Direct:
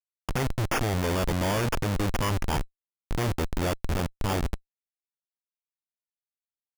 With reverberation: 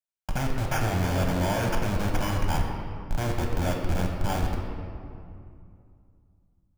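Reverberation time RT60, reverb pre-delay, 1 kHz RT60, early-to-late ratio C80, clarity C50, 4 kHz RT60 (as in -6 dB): 2.4 s, 4 ms, 2.4 s, 4.5 dB, 3.0 dB, 1.4 s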